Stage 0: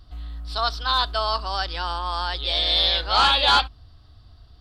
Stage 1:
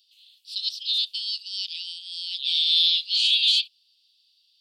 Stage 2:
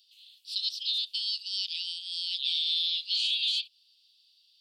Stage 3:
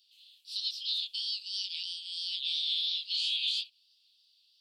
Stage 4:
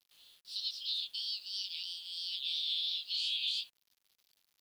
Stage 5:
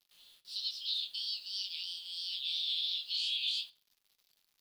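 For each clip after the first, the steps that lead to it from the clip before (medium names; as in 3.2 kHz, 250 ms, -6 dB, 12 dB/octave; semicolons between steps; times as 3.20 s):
steep high-pass 2.6 kHz 72 dB/octave; trim +1 dB
compression 6:1, threshold -26 dBFS, peak gain reduction 9.5 dB
chorus 3 Hz, delay 20 ms, depth 7.7 ms
word length cut 10-bit, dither none; trim -3.5 dB
reverberation RT60 0.40 s, pre-delay 5 ms, DRR 9.5 dB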